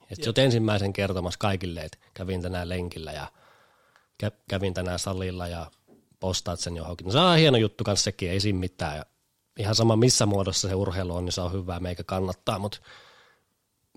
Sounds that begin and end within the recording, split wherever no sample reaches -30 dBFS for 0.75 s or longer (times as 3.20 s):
4.20–12.75 s